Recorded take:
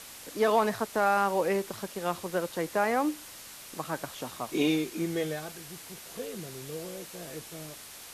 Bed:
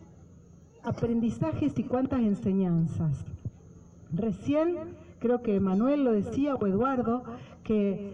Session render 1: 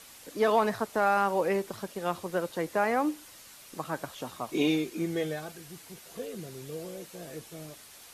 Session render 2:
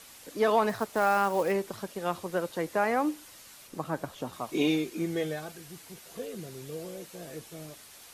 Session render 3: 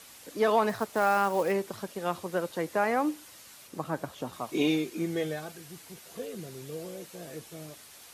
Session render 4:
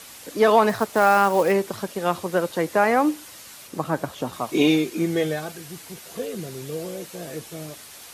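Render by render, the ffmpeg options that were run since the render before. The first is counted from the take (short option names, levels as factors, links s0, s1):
-af "afftdn=nr=6:nf=-47"
-filter_complex "[0:a]asettb=1/sr,asplit=3[s0][s1][s2];[s0]atrim=end=0.694[s3];[s1]atrim=start=0.69:end=1.52,asetpts=PTS-STARTPTS,afade=t=in:d=0.004:c=qsin,afade=t=out:st=0.826:d=0.004:c=qsin,acrusher=bits=5:mode=log:mix=0:aa=0.000001[s4];[s2]atrim=start=1.516[s5];[s3][s4]acrossfade=d=0.004:c1=hsin:c2=qsin[s6];[s6][s5]acrossfade=d=0.004:c1=qsin:c2=hsin,asettb=1/sr,asplit=3[s7][s8][s9];[s7]atrim=end=3.674[s10];[s8]atrim=start=3.67:end=4.33,asetpts=PTS-STARTPTS,afade=t=in:d=0.004:c=qsin,afade=t=out:st=0.656:d=0.004:c=qsin,tiltshelf=f=920:g=4[s11];[s9]atrim=start=4.326[s12];[s10][s11]acrossfade=d=0.004:c1=hsin:c2=qsin[s13];[s13][s12]acrossfade=d=0.004:c1=qsin:c2=hsin"
-af "highpass=50"
-af "volume=2.51"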